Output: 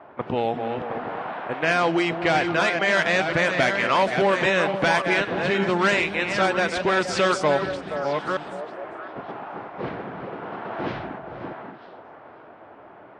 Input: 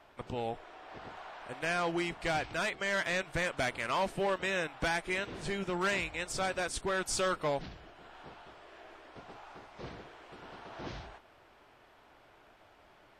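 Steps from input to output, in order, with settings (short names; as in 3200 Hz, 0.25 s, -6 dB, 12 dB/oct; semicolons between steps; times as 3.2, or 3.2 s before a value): reverse delay 0.558 s, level -7 dB; HPF 140 Hz 12 dB/oct; high shelf 6200 Hz -6.5 dB; in parallel at +1.5 dB: compressor 16:1, threshold -38 dBFS, peak gain reduction 12 dB; on the sum: vibrato 4.6 Hz 6 cents; low-pass opened by the level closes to 1200 Hz, open at -22.5 dBFS; on a send: delay with a stepping band-pass 0.236 s, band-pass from 220 Hz, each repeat 1.4 oct, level -5 dB; on the sum: gain +8.5 dB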